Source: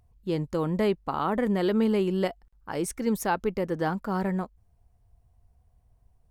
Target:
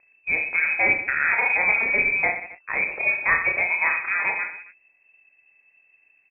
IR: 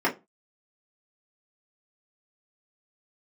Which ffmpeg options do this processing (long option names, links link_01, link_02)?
-filter_complex "[0:a]highpass=frequency=79:poles=1,acrossover=split=320[link_01][link_02];[link_01]alimiter=level_in=7dB:limit=-24dB:level=0:latency=1,volume=-7dB[link_03];[link_03][link_02]amix=inputs=2:normalize=0,acrusher=bits=6:mode=log:mix=0:aa=0.000001,aexciter=amount=3.4:drive=6.9:freq=2000,asplit=2[link_04][link_05];[link_05]aecho=0:1:30|69|119.7|185.6|271.3:0.631|0.398|0.251|0.158|0.1[link_06];[link_04][link_06]amix=inputs=2:normalize=0,lowpass=frequency=2300:width_type=q:width=0.5098,lowpass=frequency=2300:width_type=q:width=0.6013,lowpass=frequency=2300:width_type=q:width=0.9,lowpass=frequency=2300:width_type=q:width=2.563,afreqshift=-2700,volume=4.5dB"